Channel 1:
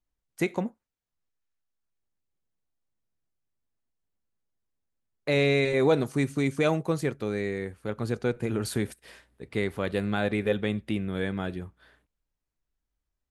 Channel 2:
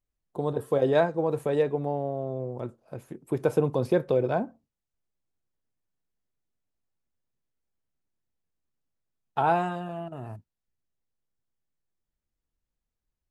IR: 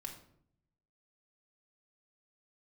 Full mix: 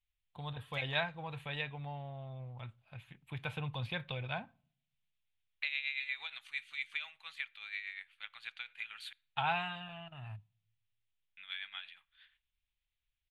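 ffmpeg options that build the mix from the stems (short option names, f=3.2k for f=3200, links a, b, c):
-filter_complex "[0:a]highpass=1.4k,acompressor=threshold=-35dB:ratio=6,tremolo=f=8.5:d=0.6,adelay=350,volume=-5.5dB,asplit=3[a][b][c];[a]atrim=end=9.13,asetpts=PTS-STARTPTS,afade=t=out:st=9.126:d=0.004:c=hsin[d];[b]atrim=start=9.13:end=11.37,asetpts=PTS-STARTPTS,volume=0[e];[c]atrim=start=11.37,asetpts=PTS-STARTPTS,afade=t=in:d=0.004:c=hsin[f];[d][e][f]concat=n=3:v=0:a=1,asplit=2[g][h];[h]volume=-16dB[i];[1:a]volume=-4.5dB,asplit=2[j][k];[k]volume=-20.5dB[l];[2:a]atrim=start_sample=2205[m];[i][l]amix=inputs=2:normalize=0[n];[n][m]afir=irnorm=-1:irlink=0[o];[g][j][o]amix=inputs=3:normalize=0,firequalizer=gain_entry='entry(110,0);entry(230,-16);entry(360,-26);entry(790,-6);entry(1200,-4);entry(2400,11);entry(3500,11);entry(5300,-13)':delay=0.05:min_phase=1"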